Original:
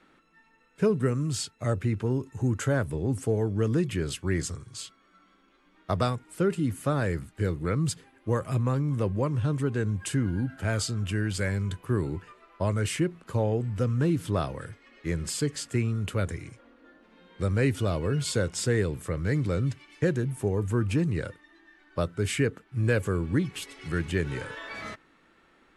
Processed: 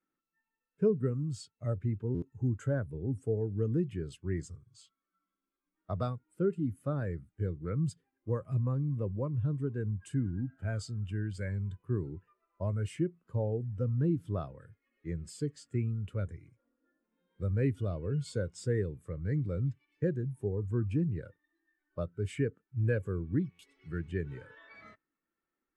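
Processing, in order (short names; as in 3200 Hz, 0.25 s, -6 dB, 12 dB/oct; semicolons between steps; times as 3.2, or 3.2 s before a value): stuck buffer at 2.14/23.51, samples 512, times 6; spectral expander 1.5:1; gain -6 dB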